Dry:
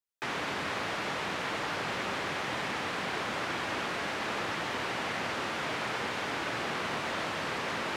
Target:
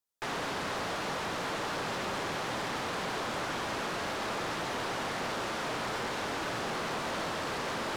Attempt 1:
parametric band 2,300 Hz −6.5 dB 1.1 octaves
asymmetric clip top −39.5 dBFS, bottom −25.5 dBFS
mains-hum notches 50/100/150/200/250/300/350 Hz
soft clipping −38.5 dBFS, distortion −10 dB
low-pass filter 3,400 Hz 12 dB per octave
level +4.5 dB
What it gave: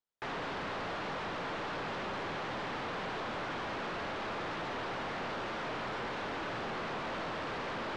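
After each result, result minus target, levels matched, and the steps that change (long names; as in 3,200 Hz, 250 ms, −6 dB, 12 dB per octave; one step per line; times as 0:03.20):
soft clipping: distortion +9 dB; 4,000 Hz band −2.5 dB
change: soft clipping −30 dBFS, distortion −19 dB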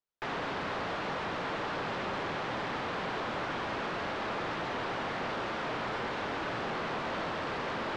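4,000 Hz band −3.0 dB
remove: low-pass filter 3,400 Hz 12 dB per octave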